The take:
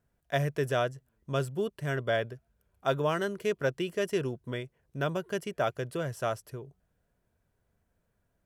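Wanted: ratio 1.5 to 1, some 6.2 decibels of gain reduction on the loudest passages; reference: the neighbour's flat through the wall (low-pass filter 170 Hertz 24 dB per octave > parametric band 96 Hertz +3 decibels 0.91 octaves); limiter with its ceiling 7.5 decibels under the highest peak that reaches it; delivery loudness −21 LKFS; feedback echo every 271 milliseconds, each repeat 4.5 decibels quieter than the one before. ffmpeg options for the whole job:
ffmpeg -i in.wav -af "acompressor=threshold=-41dB:ratio=1.5,alimiter=level_in=4.5dB:limit=-24dB:level=0:latency=1,volume=-4.5dB,lowpass=frequency=170:width=0.5412,lowpass=frequency=170:width=1.3066,equalizer=frequency=96:width_type=o:width=0.91:gain=3,aecho=1:1:271|542|813|1084|1355|1626|1897|2168|2439:0.596|0.357|0.214|0.129|0.0772|0.0463|0.0278|0.0167|0.01,volume=24dB" out.wav

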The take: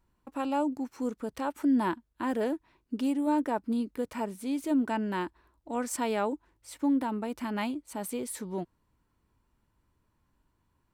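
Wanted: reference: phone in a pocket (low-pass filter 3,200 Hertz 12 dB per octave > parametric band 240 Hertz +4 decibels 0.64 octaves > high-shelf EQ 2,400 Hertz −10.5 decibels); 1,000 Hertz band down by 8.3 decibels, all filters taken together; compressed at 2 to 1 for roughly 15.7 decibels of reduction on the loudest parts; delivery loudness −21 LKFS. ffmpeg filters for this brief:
ffmpeg -i in.wav -af "equalizer=frequency=1000:width_type=o:gain=-8.5,acompressor=threshold=-53dB:ratio=2,lowpass=3200,equalizer=frequency=240:width_type=o:width=0.64:gain=4,highshelf=frequency=2400:gain=-10.5,volume=23dB" out.wav

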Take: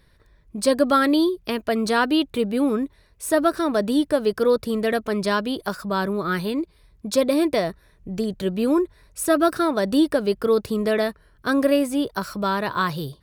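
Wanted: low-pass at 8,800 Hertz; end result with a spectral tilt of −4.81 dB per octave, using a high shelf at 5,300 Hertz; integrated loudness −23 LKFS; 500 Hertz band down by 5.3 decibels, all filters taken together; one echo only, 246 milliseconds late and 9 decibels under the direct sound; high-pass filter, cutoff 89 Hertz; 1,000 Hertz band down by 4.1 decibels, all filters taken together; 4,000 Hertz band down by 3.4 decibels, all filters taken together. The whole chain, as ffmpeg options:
ffmpeg -i in.wav -af "highpass=89,lowpass=8800,equalizer=frequency=500:width_type=o:gain=-5.5,equalizer=frequency=1000:width_type=o:gain=-4,equalizer=frequency=4000:width_type=o:gain=-5.5,highshelf=frequency=5300:gain=4,aecho=1:1:246:0.355,volume=2dB" out.wav

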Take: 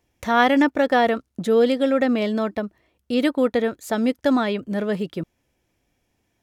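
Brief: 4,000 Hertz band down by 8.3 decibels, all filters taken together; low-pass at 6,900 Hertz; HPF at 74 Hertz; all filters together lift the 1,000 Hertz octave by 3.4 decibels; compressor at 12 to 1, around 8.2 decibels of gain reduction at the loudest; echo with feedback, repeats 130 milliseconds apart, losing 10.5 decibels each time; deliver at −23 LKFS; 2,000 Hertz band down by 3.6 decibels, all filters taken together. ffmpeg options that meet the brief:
ffmpeg -i in.wav -af "highpass=74,lowpass=6900,equalizer=frequency=1000:width_type=o:gain=6.5,equalizer=frequency=2000:width_type=o:gain=-5.5,equalizer=frequency=4000:width_type=o:gain=-9,acompressor=threshold=-19dB:ratio=12,aecho=1:1:130|260|390:0.299|0.0896|0.0269,volume=2dB" out.wav

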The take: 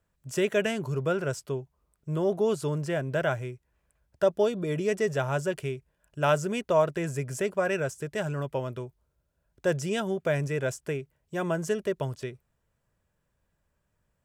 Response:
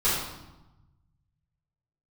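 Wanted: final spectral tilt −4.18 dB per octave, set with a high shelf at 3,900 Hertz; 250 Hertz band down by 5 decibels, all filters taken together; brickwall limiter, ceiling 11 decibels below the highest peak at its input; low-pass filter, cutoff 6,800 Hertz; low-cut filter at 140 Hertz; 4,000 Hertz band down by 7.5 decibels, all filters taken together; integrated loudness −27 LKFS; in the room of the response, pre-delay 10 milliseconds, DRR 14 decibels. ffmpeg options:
-filter_complex "[0:a]highpass=140,lowpass=6800,equalizer=frequency=250:width_type=o:gain=-7,highshelf=frequency=3900:gain=-6,equalizer=frequency=4000:width_type=o:gain=-7.5,alimiter=limit=-24dB:level=0:latency=1,asplit=2[link_01][link_02];[1:a]atrim=start_sample=2205,adelay=10[link_03];[link_02][link_03]afir=irnorm=-1:irlink=0,volume=-27.5dB[link_04];[link_01][link_04]amix=inputs=2:normalize=0,volume=8dB"

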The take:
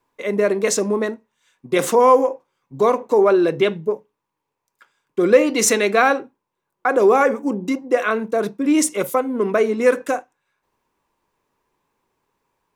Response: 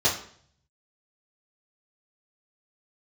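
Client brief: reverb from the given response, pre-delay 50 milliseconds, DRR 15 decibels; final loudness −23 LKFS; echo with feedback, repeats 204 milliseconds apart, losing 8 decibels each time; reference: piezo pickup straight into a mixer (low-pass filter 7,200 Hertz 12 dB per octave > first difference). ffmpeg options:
-filter_complex "[0:a]aecho=1:1:204|408|612|816|1020:0.398|0.159|0.0637|0.0255|0.0102,asplit=2[link_01][link_02];[1:a]atrim=start_sample=2205,adelay=50[link_03];[link_02][link_03]afir=irnorm=-1:irlink=0,volume=-29dB[link_04];[link_01][link_04]amix=inputs=2:normalize=0,lowpass=7200,aderivative,volume=9dB"

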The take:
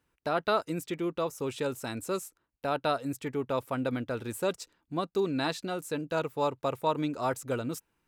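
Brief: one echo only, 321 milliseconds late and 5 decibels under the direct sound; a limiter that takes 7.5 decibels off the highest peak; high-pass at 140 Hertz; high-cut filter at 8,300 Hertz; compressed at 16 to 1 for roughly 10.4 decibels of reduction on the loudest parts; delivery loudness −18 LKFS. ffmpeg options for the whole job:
ffmpeg -i in.wav -af "highpass=140,lowpass=8300,acompressor=threshold=-33dB:ratio=16,alimiter=level_in=4.5dB:limit=-24dB:level=0:latency=1,volume=-4.5dB,aecho=1:1:321:0.562,volume=22dB" out.wav

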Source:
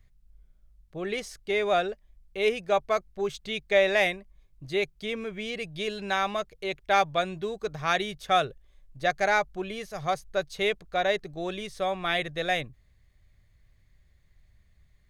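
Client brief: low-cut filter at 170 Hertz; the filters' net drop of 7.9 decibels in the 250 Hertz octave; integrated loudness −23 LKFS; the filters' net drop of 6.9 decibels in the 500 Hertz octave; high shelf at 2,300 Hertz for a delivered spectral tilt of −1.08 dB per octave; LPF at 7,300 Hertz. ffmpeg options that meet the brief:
ffmpeg -i in.wav -af "highpass=170,lowpass=7300,equalizer=frequency=250:width_type=o:gain=-7.5,equalizer=frequency=500:width_type=o:gain=-8,highshelf=frequency=2300:gain=9,volume=4.5dB" out.wav

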